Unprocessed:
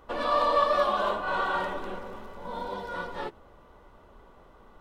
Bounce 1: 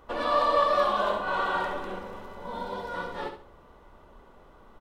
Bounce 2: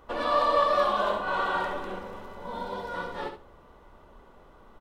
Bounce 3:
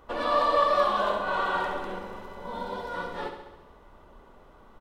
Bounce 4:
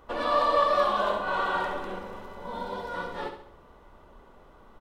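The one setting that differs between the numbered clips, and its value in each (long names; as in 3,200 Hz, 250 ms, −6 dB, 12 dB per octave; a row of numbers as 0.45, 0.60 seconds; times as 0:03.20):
repeating echo, feedback: 27, 16, 62, 42%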